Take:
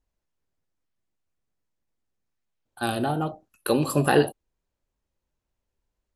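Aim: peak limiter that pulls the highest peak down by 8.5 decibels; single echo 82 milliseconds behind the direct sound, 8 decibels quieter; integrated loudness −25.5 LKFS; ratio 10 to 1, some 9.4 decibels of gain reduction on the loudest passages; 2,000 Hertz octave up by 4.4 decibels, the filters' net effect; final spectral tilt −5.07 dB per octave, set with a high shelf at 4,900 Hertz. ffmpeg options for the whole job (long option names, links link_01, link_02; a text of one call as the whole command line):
ffmpeg -i in.wav -af "equalizer=frequency=2000:width_type=o:gain=7.5,highshelf=frequency=4900:gain=-8.5,acompressor=threshold=-22dB:ratio=10,alimiter=limit=-18.5dB:level=0:latency=1,aecho=1:1:82:0.398,volume=5.5dB" out.wav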